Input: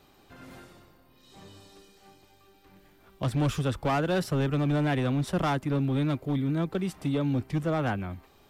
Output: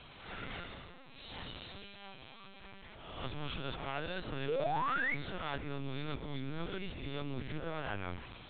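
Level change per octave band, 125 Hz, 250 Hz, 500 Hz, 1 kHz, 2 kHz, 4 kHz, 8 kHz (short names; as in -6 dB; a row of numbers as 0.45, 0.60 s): -15.5 dB, -15.5 dB, -9.5 dB, -5.5 dB, -2.0 dB, -3.0 dB, under -30 dB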